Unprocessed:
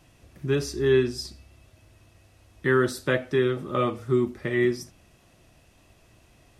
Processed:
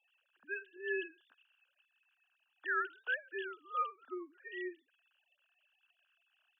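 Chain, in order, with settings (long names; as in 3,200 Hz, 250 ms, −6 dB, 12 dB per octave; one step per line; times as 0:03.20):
three sine waves on the formant tracks
pair of resonant band-passes 2,100 Hz, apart 0.82 octaves
level +4 dB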